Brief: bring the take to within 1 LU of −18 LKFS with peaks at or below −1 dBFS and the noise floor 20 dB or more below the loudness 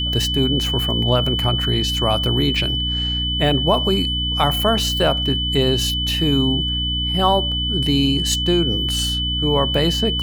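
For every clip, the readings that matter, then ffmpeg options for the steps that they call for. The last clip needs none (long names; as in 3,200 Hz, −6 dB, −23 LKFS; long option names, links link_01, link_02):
mains hum 60 Hz; hum harmonics up to 300 Hz; level of the hum −23 dBFS; interfering tone 3,000 Hz; level of the tone −21 dBFS; integrated loudness −18.0 LKFS; sample peak −2.0 dBFS; target loudness −18.0 LKFS
→ -af "bandreject=frequency=60:width_type=h:width=6,bandreject=frequency=120:width_type=h:width=6,bandreject=frequency=180:width_type=h:width=6,bandreject=frequency=240:width_type=h:width=6,bandreject=frequency=300:width_type=h:width=6"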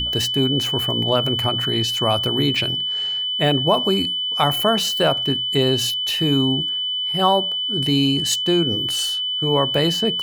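mains hum none found; interfering tone 3,000 Hz; level of the tone −21 dBFS
→ -af "bandreject=frequency=3000:width=30"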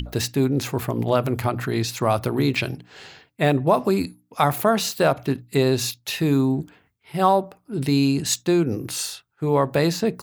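interfering tone none found; integrated loudness −22.5 LKFS; sample peak −3.5 dBFS; target loudness −18.0 LKFS
→ -af "volume=4.5dB,alimiter=limit=-1dB:level=0:latency=1"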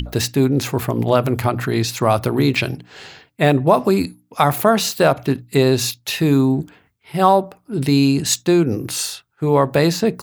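integrated loudness −18.0 LKFS; sample peak −1.0 dBFS; background noise floor −62 dBFS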